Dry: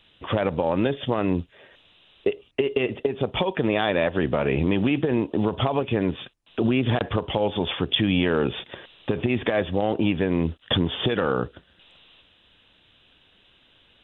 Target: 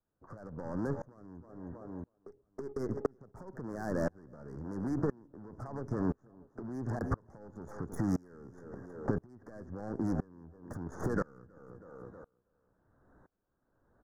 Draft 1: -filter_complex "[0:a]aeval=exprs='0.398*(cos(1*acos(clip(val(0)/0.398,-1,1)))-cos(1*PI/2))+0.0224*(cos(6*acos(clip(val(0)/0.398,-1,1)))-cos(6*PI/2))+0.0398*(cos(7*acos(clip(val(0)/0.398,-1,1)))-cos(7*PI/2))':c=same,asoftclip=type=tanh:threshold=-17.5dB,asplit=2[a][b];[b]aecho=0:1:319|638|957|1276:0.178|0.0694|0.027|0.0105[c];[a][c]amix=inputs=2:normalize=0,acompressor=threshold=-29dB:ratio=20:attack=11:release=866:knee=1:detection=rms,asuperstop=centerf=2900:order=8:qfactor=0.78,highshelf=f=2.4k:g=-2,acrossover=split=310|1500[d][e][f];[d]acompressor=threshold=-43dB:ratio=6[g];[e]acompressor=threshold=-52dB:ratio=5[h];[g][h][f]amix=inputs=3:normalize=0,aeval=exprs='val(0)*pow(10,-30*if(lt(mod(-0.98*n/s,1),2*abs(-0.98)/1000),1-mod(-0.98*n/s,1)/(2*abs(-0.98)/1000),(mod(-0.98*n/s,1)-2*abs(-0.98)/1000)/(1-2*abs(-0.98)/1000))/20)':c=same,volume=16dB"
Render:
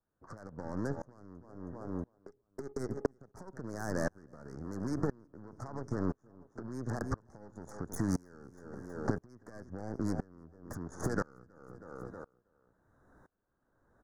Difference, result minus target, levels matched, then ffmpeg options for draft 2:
soft clip: distortion -7 dB; 2000 Hz band +3.5 dB
-filter_complex "[0:a]aeval=exprs='0.398*(cos(1*acos(clip(val(0)/0.398,-1,1)))-cos(1*PI/2))+0.0224*(cos(6*acos(clip(val(0)/0.398,-1,1)))-cos(6*PI/2))+0.0398*(cos(7*acos(clip(val(0)/0.398,-1,1)))-cos(7*PI/2))':c=same,asoftclip=type=tanh:threshold=-26dB,asplit=2[a][b];[b]aecho=0:1:319|638|957|1276:0.178|0.0694|0.027|0.0105[c];[a][c]amix=inputs=2:normalize=0,acompressor=threshold=-29dB:ratio=20:attack=11:release=866:knee=1:detection=rms,asuperstop=centerf=2900:order=8:qfactor=0.78,highshelf=f=2.4k:g=-13.5,acrossover=split=310|1500[d][e][f];[d]acompressor=threshold=-43dB:ratio=6[g];[e]acompressor=threshold=-52dB:ratio=5[h];[g][h][f]amix=inputs=3:normalize=0,aeval=exprs='val(0)*pow(10,-30*if(lt(mod(-0.98*n/s,1),2*abs(-0.98)/1000),1-mod(-0.98*n/s,1)/(2*abs(-0.98)/1000),(mod(-0.98*n/s,1)-2*abs(-0.98)/1000)/(1-2*abs(-0.98)/1000))/20)':c=same,volume=16dB"

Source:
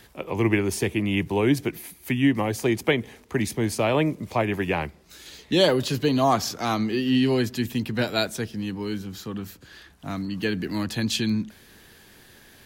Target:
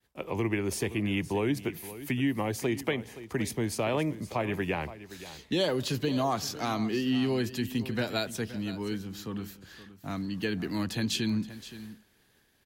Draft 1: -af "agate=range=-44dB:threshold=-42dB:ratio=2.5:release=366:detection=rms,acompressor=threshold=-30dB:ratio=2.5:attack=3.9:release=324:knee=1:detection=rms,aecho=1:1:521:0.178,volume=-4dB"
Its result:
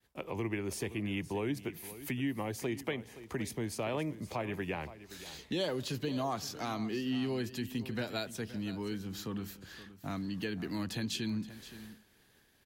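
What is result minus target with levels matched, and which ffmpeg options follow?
compressor: peak gain reduction +6.5 dB
-af "agate=range=-44dB:threshold=-42dB:ratio=2.5:release=366:detection=rms,acompressor=threshold=-19.5dB:ratio=2.5:attack=3.9:release=324:knee=1:detection=rms,aecho=1:1:521:0.178,volume=-4dB"

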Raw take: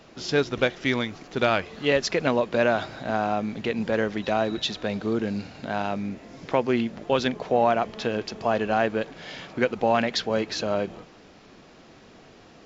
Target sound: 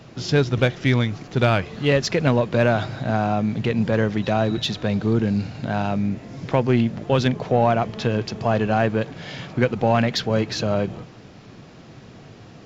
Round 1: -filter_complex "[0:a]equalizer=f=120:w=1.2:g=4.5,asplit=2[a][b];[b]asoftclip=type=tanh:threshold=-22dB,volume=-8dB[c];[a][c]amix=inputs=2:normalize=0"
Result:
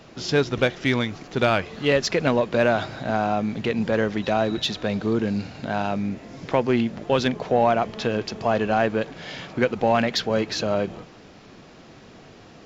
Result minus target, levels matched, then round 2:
125 Hz band -6.5 dB
-filter_complex "[0:a]equalizer=f=120:w=1.2:g=14,asplit=2[a][b];[b]asoftclip=type=tanh:threshold=-22dB,volume=-8dB[c];[a][c]amix=inputs=2:normalize=0"

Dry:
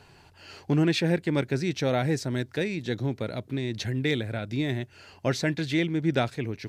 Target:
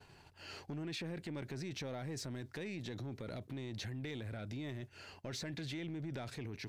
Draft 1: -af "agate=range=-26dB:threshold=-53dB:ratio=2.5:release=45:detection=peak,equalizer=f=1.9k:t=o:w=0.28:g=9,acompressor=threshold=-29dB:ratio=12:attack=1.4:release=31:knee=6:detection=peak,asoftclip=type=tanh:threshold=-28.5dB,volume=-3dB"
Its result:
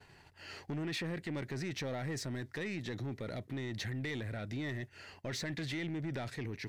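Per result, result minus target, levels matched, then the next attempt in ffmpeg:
compressor: peak gain reduction -5.5 dB; 2000 Hz band +3.0 dB
-af "agate=range=-26dB:threshold=-53dB:ratio=2.5:release=45:detection=peak,equalizer=f=1.9k:t=o:w=0.28:g=9,acompressor=threshold=-35.5dB:ratio=12:attack=1.4:release=31:knee=6:detection=peak,asoftclip=type=tanh:threshold=-28.5dB,volume=-3dB"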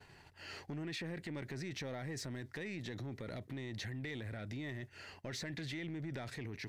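2000 Hz band +3.5 dB
-af "agate=range=-26dB:threshold=-53dB:ratio=2.5:release=45:detection=peak,acompressor=threshold=-35.5dB:ratio=12:attack=1.4:release=31:knee=6:detection=peak,asoftclip=type=tanh:threshold=-28.5dB,volume=-3dB"

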